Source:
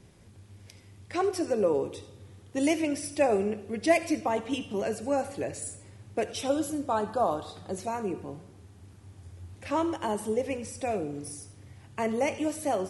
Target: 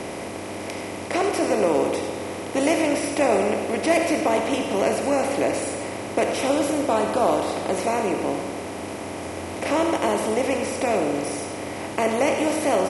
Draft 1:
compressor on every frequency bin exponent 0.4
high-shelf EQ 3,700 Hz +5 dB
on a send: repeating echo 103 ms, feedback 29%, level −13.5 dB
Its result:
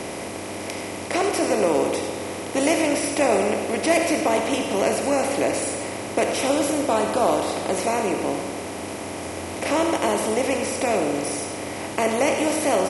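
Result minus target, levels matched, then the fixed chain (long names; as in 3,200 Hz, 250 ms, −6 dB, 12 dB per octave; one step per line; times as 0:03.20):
8,000 Hz band +3.5 dB
compressor on every frequency bin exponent 0.4
on a send: repeating echo 103 ms, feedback 29%, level −13.5 dB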